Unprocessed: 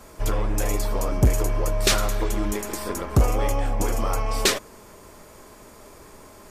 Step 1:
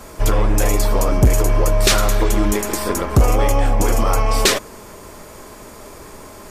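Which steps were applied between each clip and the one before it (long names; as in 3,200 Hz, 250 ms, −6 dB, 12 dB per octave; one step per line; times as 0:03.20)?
boost into a limiter +13.5 dB
level −5 dB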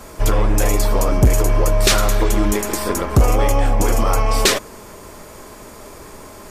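no processing that can be heard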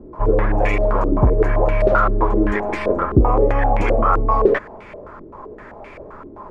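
low-pass on a step sequencer 7.7 Hz 340–2,300 Hz
level −2.5 dB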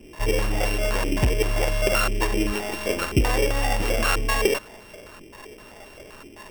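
samples sorted by size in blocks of 16 samples
level −6.5 dB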